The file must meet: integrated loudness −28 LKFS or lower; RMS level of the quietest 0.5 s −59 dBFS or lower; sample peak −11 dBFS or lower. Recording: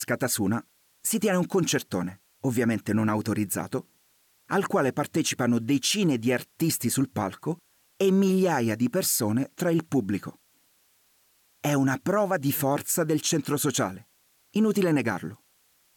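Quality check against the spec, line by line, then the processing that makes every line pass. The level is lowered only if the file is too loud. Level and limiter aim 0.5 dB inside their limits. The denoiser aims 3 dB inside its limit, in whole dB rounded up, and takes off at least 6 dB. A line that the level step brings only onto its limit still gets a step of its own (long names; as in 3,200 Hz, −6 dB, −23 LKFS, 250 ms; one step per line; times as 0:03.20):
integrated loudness −26.0 LKFS: out of spec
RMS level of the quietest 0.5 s −65 dBFS: in spec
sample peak −13.0 dBFS: in spec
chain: level −2.5 dB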